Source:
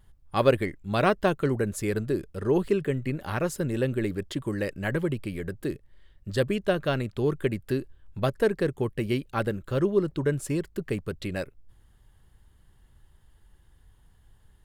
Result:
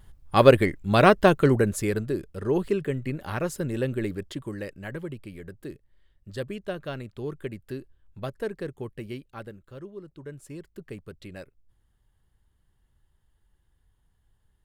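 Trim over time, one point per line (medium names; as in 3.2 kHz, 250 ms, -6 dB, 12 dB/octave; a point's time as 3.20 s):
1.54 s +6 dB
2.10 s -1 dB
4.07 s -1 dB
4.88 s -8 dB
8.95 s -8 dB
9.95 s -18 dB
10.80 s -10 dB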